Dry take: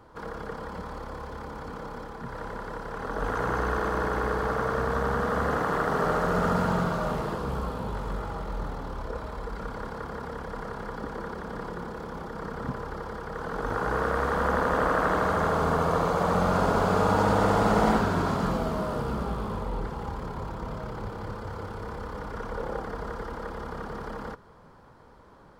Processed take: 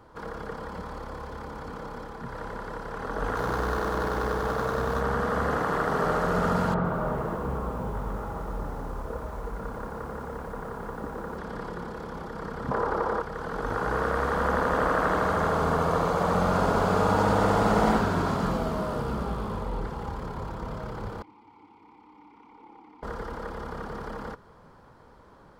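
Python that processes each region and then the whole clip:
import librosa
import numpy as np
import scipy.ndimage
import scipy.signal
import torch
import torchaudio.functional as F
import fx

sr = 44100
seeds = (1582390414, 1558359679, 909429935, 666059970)

y = fx.chain(x, sr, fx.median_filter(points=15),
    fx.high_shelf(hz=9700.0, db=8.5), at=(3.36, 5.01))
y = fx.chain(y, sr, fx.lowpass(hz=1600.0, slope=12),
    fx.echo_crushed(ms=101, feedback_pct=80, bits=8, wet_db=-12), at=(6.74, 11.38))
y = fx.chain(y, sr, fx.curve_eq(hz=(140.0, 390.0, 1200.0, 2300.0), db=(0, 10, 11, 2)),
    fx.doppler_dist(depth_ms=0.12), at=(12.71, 13.22))
y = fx.chain(y, sr, fx.vowel_filter(vowel='u'),
    fx.tilt_shelf(db=-6.0, hz=1200.0), at=(21.22, 23.03))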